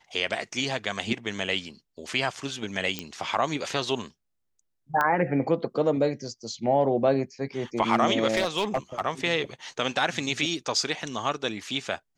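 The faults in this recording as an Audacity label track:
2.990000	2.990000	pop -14 dBFS
5.010000	5.010000	pop -12 dBFS
8.350000	9.010000	clipped -19.5 dBFS

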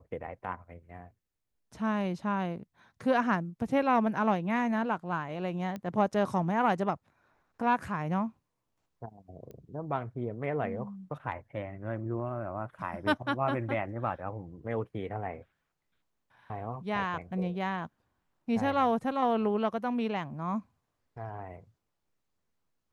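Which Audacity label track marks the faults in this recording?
5.760000	5.760000	pop -25 dBFS
9.510000	9.510000	pop -34 dBFS

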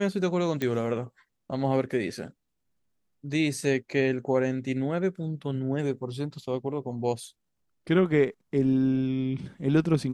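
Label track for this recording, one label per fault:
0.620000	0.620000	pop -16 dBFS

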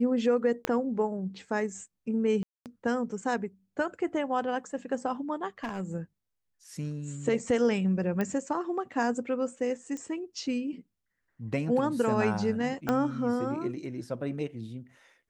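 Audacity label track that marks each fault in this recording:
0.650000	0.650000	pop -13 dBFS
2.430000	2.660000	dropout 228 ms
5.640000	5.920000	clipped -28.5 dBFS
8.210000	8.210000	pop -18 dBFS
9.970000	9.970000	pop -27 dBFS
12.890000	12.890000	pop -14 dBFS

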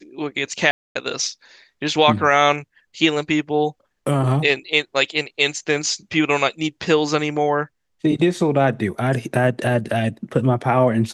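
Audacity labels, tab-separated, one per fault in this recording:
0.710000	0.950000	dropout 244 ms

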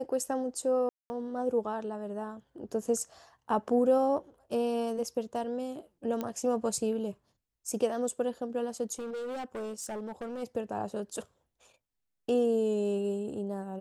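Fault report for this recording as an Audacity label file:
0.890000	1.100000	dropout 210 ms
6.210000	6.210000	pop -20 dBFS
8.990000	10.430000	clipped -34 dBFS

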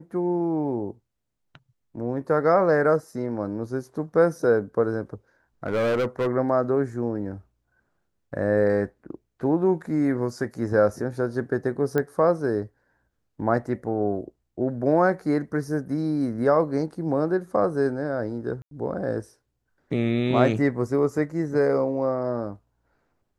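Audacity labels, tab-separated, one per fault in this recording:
5.660000	6.280000	clipped -20.5 dBFS
11.980000	11.980000	pop -13 dBFS
18.620000	18.710000	dropout 92 ms

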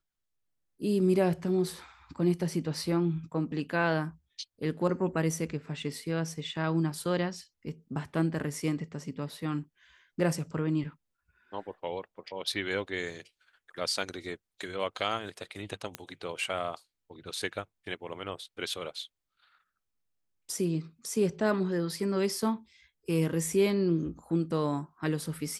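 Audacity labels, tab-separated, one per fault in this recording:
15.950000	15.950000	pop -18 dBFS

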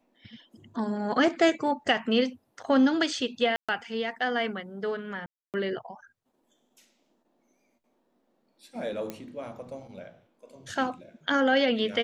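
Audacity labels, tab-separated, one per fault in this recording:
3.560000	3.690000	dropout 126 ms
5.260000	5.540000	dropout 278 ms
9.100000	9.100000	pop -20 dBFS

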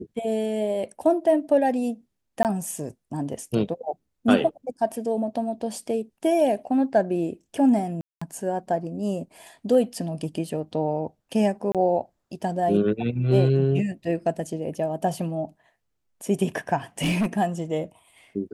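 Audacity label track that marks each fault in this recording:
2.430000	2.450000	dropout 18 ms
8.010000	8.210000	dropout 205 ms
11.720000	11.750000	dropout 27 ms
17.020000	17.260000	clipped -19.5 dBFS

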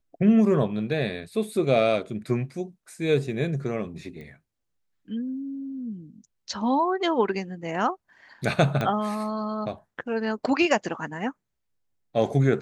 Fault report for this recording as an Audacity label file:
4.210000	4.210000	pop -31 dBFS
8.810000	8.810000	pop -14 dBFS

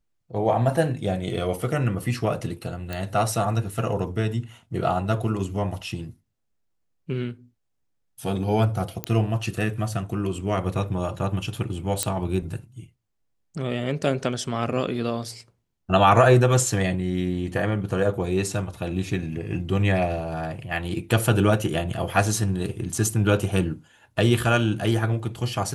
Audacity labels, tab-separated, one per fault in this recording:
2.930000	2.930000	pop -16 dBFS
9.040000	9.040000	pop -9 dBFS
12.030000	12.030000	pop -6 dBFS

